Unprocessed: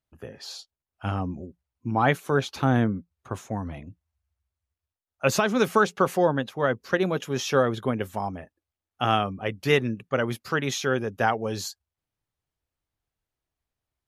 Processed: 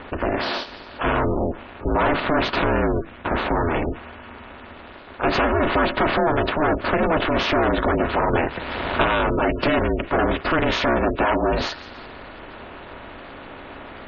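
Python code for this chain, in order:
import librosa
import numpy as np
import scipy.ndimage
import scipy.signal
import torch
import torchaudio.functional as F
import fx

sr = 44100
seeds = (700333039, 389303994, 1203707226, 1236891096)

p1 = fx.bin_compress(x, sr, power=0.4)
p2 = fx.tube_stage(p1, sr, drive_db=20.0, bias=0.3)
p3 = scipy.signal.sosfilt(scipy.signal.butter(4, 4600.0, 'lowpass', fs=sr, output='sos'), p2)
p4 = fx.backlash(p3, sr, play_db=-37.0, at=(2.89, 3.4))
p5 = p4 + fx.echo_wet_highpass(p4, sr, ms=169, feedback_pct=61, hz=1500.0, wet_db=-15.5, dry=0)
p6 = fx.spec_gate(p5, sr, threshold_db=-20, keep='strong')
p7 = p6 * np.sin(2.0 * np.pi * 160.0 * np.arange(len(p6)) / sr)
p8 = fx.band_squash(p7, sr, depth_pct=100, at=(8.33, 9.73))
y = p8 * 10.0 ** (8.0 / 20.0)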